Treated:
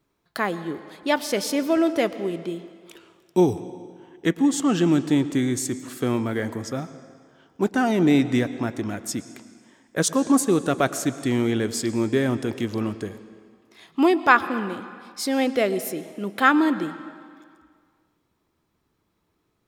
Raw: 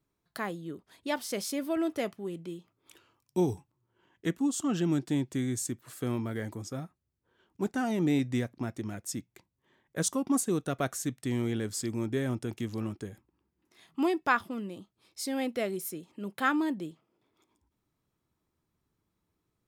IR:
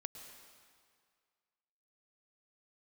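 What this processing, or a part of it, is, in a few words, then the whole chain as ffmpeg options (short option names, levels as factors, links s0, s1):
filtered reverb send: -filter_complex "[0:a]asplit=2[s0][s1];[s1]highpass=190,lowpass=6300[s2];[1:a]atrim=start_sample=2205[s3];[s2][s3]afir=irnorm=-1:irlink=0,volume=1.06[s4];[s0][s4]amix=inputs=2:normalize=0,volume=2"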